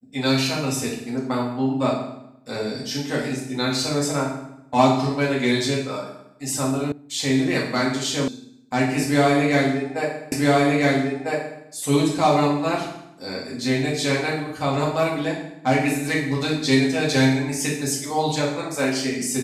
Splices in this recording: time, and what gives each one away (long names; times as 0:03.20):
0:06.92: cut off before it has died away
0:08.28: cut off before it has died away
0:10.32: the same again, the last 1.3 s